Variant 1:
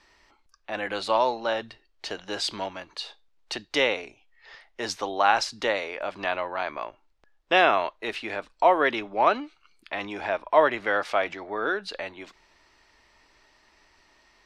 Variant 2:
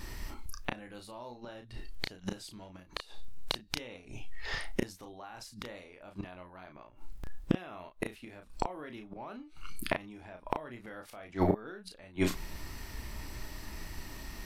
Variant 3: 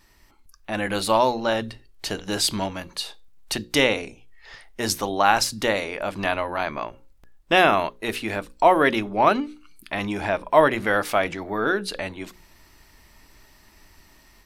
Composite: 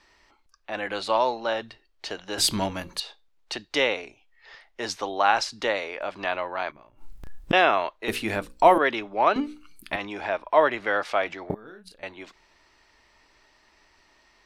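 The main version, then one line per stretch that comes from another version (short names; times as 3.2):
1
2.38–3 from 3
6.71–7.53 from 2
8.08–8.78 from 3
9.36–9.96 from 3
11.5–12.03 from 2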